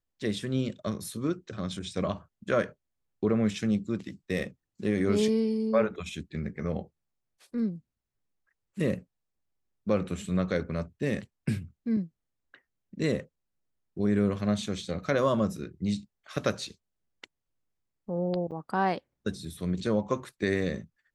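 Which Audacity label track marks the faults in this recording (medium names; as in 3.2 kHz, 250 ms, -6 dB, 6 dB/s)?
18.510000	18.520000	dropout 7.6 ms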